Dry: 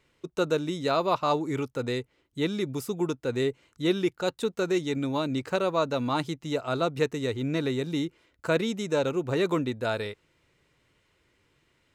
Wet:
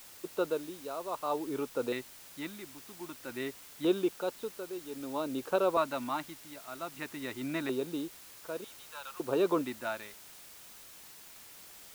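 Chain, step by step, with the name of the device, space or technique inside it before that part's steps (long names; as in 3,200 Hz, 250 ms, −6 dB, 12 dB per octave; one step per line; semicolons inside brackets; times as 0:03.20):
0:08.64–0:09.20: high-pass filter 1,100 Hz 24 dB per octave
shortwave radio (band-pass filter 310–2,700 Hz; amplitude tremolo 0.53 Hz, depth 77%; auto-filter notch square 0.26 Hz 460–2,000 Hz; white noise bed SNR 16 dB)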